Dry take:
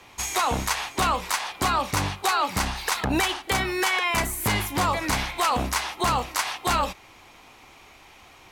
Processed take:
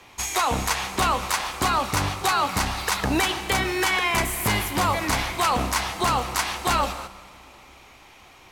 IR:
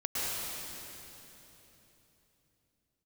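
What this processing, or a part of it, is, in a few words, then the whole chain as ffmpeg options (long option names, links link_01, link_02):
keyed gated reverb: -filter_complex "[0:a]asplit=3[link_01][link_02][link_03];[1:a]atrim=start_sample=2205[link_04];[link_02][link_04]afir=irnorm=-1:irlink=0[link_05];[link_03]apad=whole_len=375376[link_06];[link_05][link_06]sidechaingate=range=-9dB:threshold=-46dB:ratio=16:detection=peak,volume=-16.5dB[link_07];[link_01][link_07]amix=inputs=2:normalize=0"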